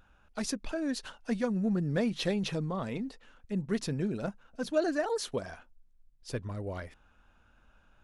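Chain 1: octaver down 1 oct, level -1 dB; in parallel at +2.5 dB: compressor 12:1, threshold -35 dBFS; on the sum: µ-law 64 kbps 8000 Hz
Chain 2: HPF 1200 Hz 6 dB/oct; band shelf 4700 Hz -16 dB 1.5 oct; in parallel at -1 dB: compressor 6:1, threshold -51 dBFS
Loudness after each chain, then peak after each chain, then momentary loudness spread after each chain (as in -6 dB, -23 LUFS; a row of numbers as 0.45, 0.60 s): -29.0, -41.5 LUFS; -14.0, -22.0 dBFS; 10, 11 LU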